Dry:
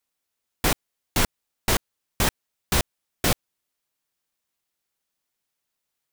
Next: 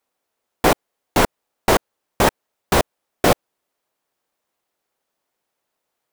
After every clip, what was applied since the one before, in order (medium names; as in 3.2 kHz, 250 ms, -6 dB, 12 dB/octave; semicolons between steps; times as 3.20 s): peaking EQ 590 Hz +13 dB 2.9 oct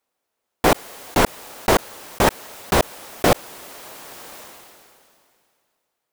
decay stretcher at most 25 dB/s; trim -1 dB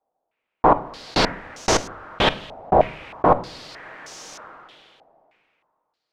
in parallel at -8 dB: hard clipper -15 dBFS, distortion -8 dB; on the sum: simulated room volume 670 m³, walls furnished, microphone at 0.56 m; step-sequenced low-pass 3.2 Hz 740–6100 Hz; trim -5.5 dB